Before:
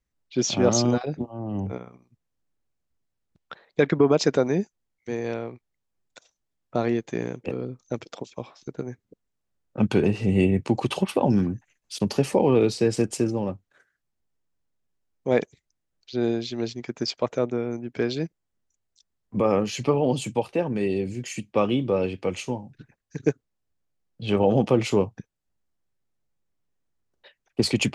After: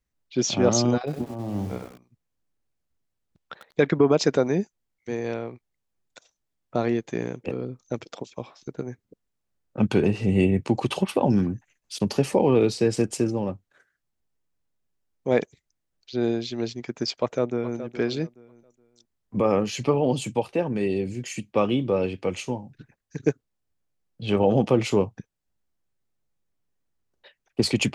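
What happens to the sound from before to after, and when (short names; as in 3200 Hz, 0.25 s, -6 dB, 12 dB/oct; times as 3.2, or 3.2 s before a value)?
0.98–3.87 lo-fi delay 95 ms, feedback 35%, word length 7-bit, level -7.5 dB
17.21–17.79 echo throw 0.42 s, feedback 25%, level -12 dB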